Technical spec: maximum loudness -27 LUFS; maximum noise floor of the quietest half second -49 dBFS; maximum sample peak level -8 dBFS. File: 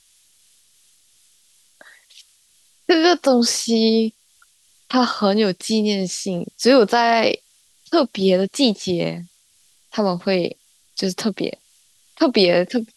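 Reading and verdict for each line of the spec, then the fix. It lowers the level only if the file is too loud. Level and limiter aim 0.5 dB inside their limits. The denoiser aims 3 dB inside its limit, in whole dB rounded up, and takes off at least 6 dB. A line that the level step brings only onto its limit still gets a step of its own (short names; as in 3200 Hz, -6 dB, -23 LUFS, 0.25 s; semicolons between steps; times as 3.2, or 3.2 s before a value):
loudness -19.0 LUFS: fail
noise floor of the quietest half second -58 dBFS: OK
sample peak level -4.5 dBFS: fail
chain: gain -8.5 dB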